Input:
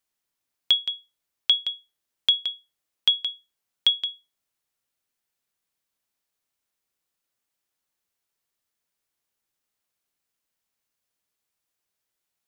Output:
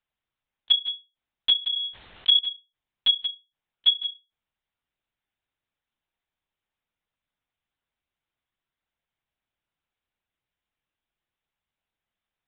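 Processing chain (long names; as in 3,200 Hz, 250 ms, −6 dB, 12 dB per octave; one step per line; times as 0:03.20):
linear-prediction vocoder at 8 kHz pitch kept
0:01.59–0:02.39: level that may fall only so fast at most 22 dB per second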